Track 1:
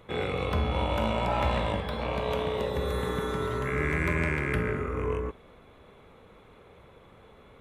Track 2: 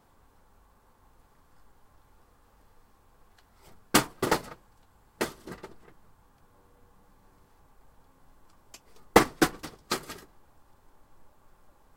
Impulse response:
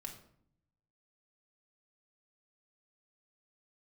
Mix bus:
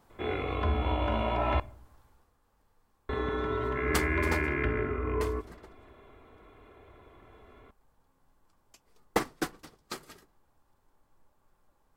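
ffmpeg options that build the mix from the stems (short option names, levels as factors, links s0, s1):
-filter_complex "[0:a]lowpass=2800,aecho=1:1:2.9:0.65,adelay=100,volume=0.668,asplit=3[s0][s1][s2];[s0]atrim=end=1.6,asetpts=PTS-STARTPTS,afade=t=out:st=1.596:d=0.004:c=hsin[s3];[s1]atrim=start=1.6:end=3.09,asetpts=PTS-STARTPTS,volume=0[s4];[s2]atrim=start=3.09,asetpts=PTS-STARTPTS,afade=t=in:d=0.004:c=hsin[s5];[s3][s4][s5]concat=n=3:v=0:a=1,asplit=2[s6][s7];[s7]volume=0.266[s8];[1:a]volume=0.944,afade=t=out:st=1.96:d=0.36:silence=0.354813[s9];[2:a]atrim=start_sample=2205[s10];[s8][s10]afir=irnorm=-1:irlink=0[s11];[s6][s9][s11]amix=inputs=3:normalize=0"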